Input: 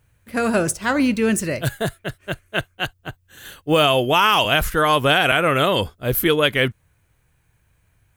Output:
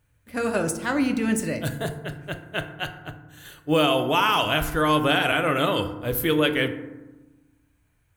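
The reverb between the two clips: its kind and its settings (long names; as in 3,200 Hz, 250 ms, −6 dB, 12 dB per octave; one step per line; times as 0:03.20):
feedback delay network reverb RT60 1.1 s, low-frequency decay 1.45×, high-frequency decay 0.4×, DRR 6.5 dB
level −6 dB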